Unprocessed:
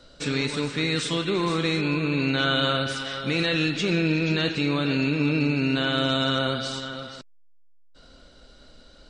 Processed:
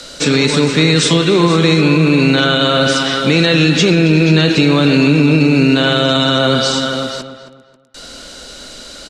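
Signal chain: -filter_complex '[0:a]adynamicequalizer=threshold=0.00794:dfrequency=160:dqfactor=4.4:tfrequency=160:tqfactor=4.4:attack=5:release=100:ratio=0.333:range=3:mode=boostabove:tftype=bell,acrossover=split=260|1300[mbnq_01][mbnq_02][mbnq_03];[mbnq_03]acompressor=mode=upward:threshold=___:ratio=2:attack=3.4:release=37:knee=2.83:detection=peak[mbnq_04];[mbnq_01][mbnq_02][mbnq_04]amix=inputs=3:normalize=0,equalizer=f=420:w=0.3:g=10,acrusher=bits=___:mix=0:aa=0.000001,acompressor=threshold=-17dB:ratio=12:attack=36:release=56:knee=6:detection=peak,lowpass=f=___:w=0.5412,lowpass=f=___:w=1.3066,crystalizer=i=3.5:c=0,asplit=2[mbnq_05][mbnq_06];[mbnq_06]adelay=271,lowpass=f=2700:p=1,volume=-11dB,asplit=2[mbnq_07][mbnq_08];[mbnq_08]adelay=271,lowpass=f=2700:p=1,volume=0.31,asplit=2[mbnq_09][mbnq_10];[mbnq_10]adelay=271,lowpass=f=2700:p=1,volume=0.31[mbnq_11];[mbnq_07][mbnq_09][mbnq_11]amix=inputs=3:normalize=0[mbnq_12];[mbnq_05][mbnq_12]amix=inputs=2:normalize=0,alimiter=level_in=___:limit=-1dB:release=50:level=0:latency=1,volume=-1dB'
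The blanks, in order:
-42dB, 7, 7700, 7700, 7.5dB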